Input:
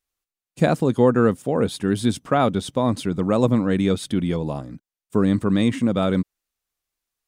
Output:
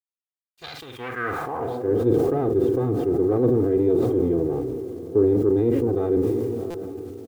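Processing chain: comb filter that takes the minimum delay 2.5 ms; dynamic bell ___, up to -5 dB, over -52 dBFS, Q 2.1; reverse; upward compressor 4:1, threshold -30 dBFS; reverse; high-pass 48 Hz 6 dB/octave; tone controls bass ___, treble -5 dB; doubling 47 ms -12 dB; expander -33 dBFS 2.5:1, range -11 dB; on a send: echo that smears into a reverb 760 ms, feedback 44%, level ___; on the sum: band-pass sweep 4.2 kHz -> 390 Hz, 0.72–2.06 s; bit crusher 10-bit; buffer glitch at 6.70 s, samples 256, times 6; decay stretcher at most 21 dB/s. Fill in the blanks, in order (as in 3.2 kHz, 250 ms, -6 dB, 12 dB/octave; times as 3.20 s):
9.3 kHz, +15 dB, -13 dB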